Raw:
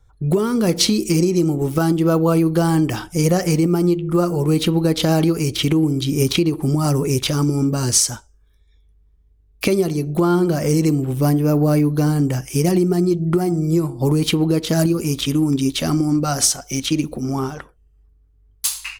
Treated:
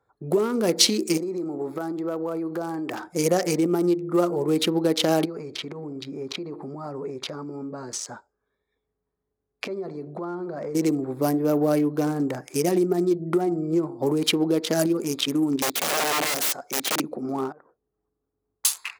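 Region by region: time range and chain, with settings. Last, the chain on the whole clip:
1.17–3.07 s: bass shelf 120 Hz -10 dB + compression, threshold -21 dBFS
5.25–10.75 s: distance through air 63 m + band-stop 320 Hz, Q 6.9 + compression, threshold -24 dBFS
13.41–13.92 s: low-pass 11 kHz + treble shelf 5.5 kHz -6 dB
15.62–17.00 s: high-pass 73 Hz 6 dB/octave + integer overflow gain 17 dB
17.52–18.65 s: low-pass 1.4 kHz + compression 4:1, threshold -46 dBFS
whole clip: local Wiener filter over 15 samples; high-pass 340 Hz 12 dB/octave; dynamic bell 1.1 kHz, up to -3 dB, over -35 dBFS, Q 1.5

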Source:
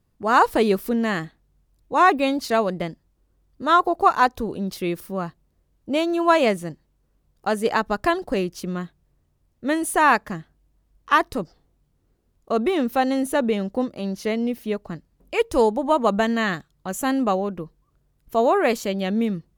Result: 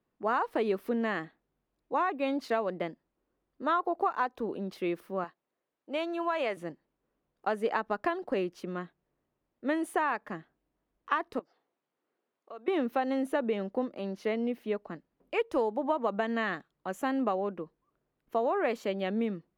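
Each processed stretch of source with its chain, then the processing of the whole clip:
5.24–6.57 s: high-pass 700 Hz 6 dB/octave + compression 3:1, threshold -20 dBFS
11.39–12.68 s: compression 2:1, threshold -46 dBFS + frequency weighting A
whole clip: three-band isolator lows -22 dB, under 220 Hz, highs -15 dB, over 3.2 kHz; compression 12:1, threshold -20 dBFS; bass shelf 150 Hz +3.5 dB; trim -4.5 dB

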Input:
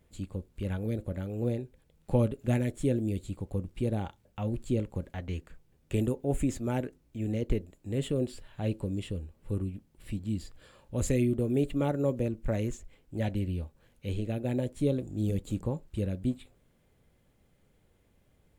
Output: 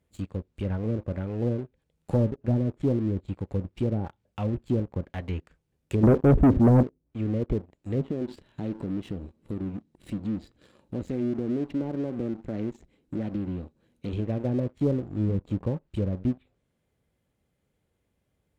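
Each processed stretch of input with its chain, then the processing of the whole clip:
6.03–6.83 s: tilt shelf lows +7 dB, about 1.1 kHz + waveshaping leveller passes 3
8.01–14.13 s: compression 4:1, threshold -40 dBFS + small resonant body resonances 220/310/3900 Hz, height 10 dB, ringing for 25 ms + loudspeaker Doppler distortion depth 0.19 ms
whole clip: high-pass 47 Hz 12 dB/octave; low-pass that closes with the level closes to 580 Hz, closed at -25.5 dBFS; waveshaping leveller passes 2; trim -3.5 dB

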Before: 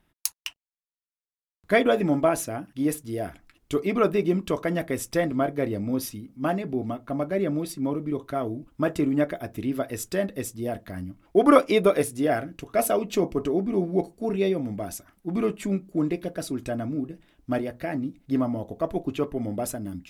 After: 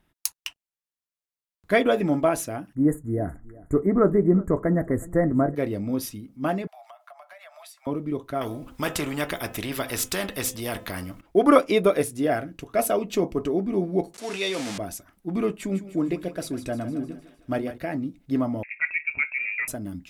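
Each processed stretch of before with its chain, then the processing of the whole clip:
2.75–5.55 s: Chebyshev band-stop 2–6.8 kHz, order 5 + tilt EQ -2.5 dB/octave + feedback delay 369 ms, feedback 16%, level -21 dB
6.67–7.87 s: steep high-pass 630 Hz 96 dB/octave + compression 16:1, threshold -42 dBFS
8.41–11.21 s: de-hum 255.7 Hz, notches 14 + spectrum-flattening compressor 2:1
14.14–14.78 s: jump at every zero crossing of -39 dBFS + frequency weighting ITU-R 468 + decay stretcher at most 23 dB/s
15.55–17.78 s: de-hum 50.67 Hz, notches 5 + thinning echo 153 ms, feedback 58%, high-pass 470 Hz, level -11 dB
18.63–19.68 s: frequency inversion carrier 2.6 kHz + bass shelf 69 Hz -9.5 dB
whole clip: none

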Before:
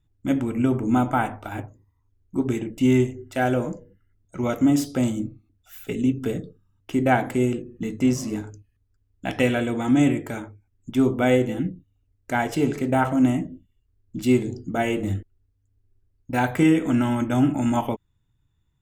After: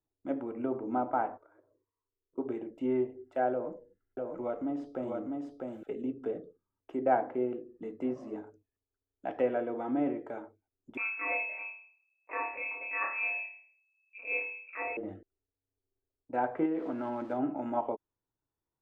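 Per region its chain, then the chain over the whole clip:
1.37–2.38 s: peaking EQ 62 Hz -13.5 dB 0.8 oct + compression, threshold -47 dBFS + static phaser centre 780 Hz, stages 6
3.52–5.83 s: bass shelf 71 Hz +10 dB + compression 1.5:1, threshold -25 dBFS + delay 650 ms -3 dB
10.97–14.97 s: monotone LPC vocoder at 8 kHz 210 Hz + flutter echo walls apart 4.8 m, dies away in 0.47 s + frequency inversion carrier 2.6 kHz
16.65–17.39 s: zero-crossing glitches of -19.5 dBFS + compression 4:1, threshold -18 dBFS
whole clip: three-band isolator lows -24 dB, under 350 Hz, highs -21 dB, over 2.5 kHz; low-pass that closes with the level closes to 2.7 kHz, closed at -24 dBFS; FFT filter 630 Hz 0 dB, 2.2 kHz -13 dB, 4.5 kHz -9 dB; trim -3 dB

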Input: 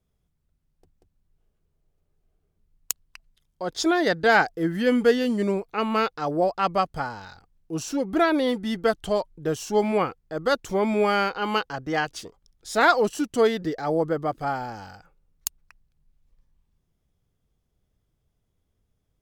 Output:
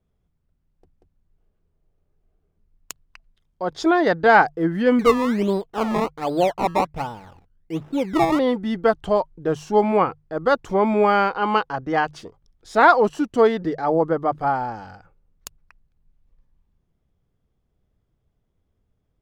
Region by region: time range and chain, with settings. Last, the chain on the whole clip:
4.99–8.39 s: median filter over 25 samples + low-pass 1.7 kHz 6 dB/octave + decimation with a swept rate 20× 1.3 Hz
whole clip: dynamic bell 970 Hz, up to +6 dB, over -39 dBFS, Q 1.8; low-pass 1.8 kHz 6 dB/octave; hum notches 50/100/150 Hz; trim +3.5 dB

